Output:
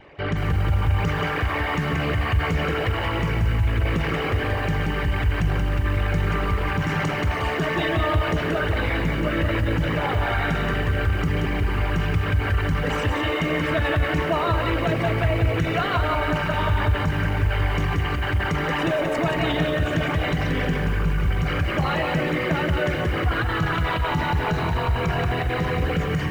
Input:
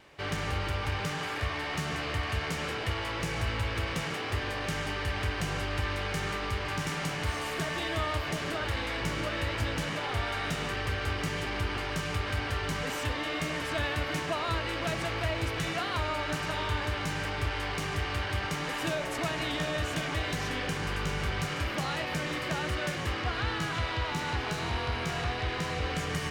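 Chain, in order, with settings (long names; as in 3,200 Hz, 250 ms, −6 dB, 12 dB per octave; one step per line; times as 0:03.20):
spectral envelope exaggerated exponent 2
feedback echo at a low word length 179 ms, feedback 35%, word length 9 bits, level −5 dB
level +8.5 dB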